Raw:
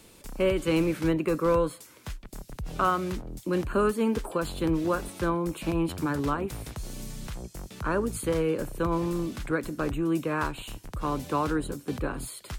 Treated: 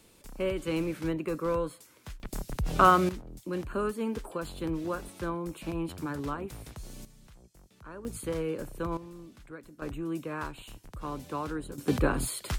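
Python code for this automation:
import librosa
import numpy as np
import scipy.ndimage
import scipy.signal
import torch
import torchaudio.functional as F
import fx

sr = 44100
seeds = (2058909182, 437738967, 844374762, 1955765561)

y = fx.gain(x, sr, db=fx.steps((0.0, -6.0), (2.2, 5.0), (3.09, -6.5), (7.05, -17.5), (8.05, -6.0), (8.97, -17.0), (9.82, -7.5), (11.78, 5.0)))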